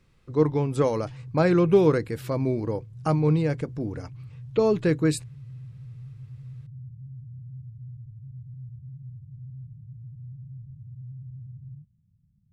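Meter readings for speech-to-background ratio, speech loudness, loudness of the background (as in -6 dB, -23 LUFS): 18.0 dB, -24.5 LUFS, -42.5 LUFS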